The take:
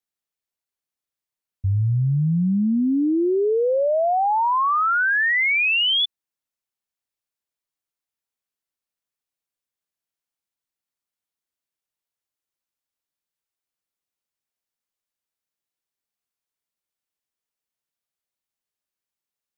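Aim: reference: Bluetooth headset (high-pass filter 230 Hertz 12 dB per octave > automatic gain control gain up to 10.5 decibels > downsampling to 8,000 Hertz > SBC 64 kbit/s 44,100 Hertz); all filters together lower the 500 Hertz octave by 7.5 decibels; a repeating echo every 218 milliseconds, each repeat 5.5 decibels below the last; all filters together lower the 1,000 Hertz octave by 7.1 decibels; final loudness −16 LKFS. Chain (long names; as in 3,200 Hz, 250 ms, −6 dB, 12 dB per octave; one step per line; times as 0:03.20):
high-pass filter 230 Hz 12 dB per octave
parametric band 500 Hz −7.5 dB
parametric band 1,000 Hz −7 dB
repeating echo 218 ms, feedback 53%, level −5.5 dB
automatic gain control gain up to 10.5 dB
downsampling to 8,000 Hz
level +3.5 dB
SBC 64 kbit/s 44,100 Hz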